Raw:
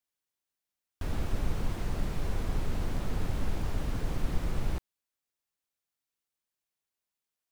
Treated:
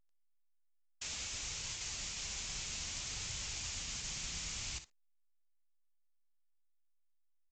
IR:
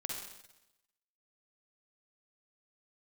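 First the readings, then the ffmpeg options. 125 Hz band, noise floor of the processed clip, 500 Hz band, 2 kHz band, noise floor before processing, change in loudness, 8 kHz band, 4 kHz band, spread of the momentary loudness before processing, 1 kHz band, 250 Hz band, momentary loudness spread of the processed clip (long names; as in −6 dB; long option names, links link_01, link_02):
−17.0 dB, −72 dBFS, −18.0 dB, −0.5 dB, below −85 dBFS, −4.0 dB, +13.5 dB, +8.5 dB, 2 LU, −11.5 dB, −19.5 dB, 2 LU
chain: -filter_complex "[0:a]agate=range=-33dB:threshold=-29dB:ratio=3:detection=peak,aderivative,aecho=1:1:35|60:0.168|0.211,acrossover=split=130[link_01][link_02];[link_02]acompressor=threshold=-56dB:ratio=4[link_03];[link_01][link_03]amix=inputs=2:normalize=0,flanger=delay=2:depth=3.3:regen=-63:speed=0.6:shape=sinusoidal,aexciter=amount=1.4:drive=8.7:freq=2200,asubboost=boost=5:cutoff=180,volume=16.5dB" -ar 16000 -c:a pcm_alaw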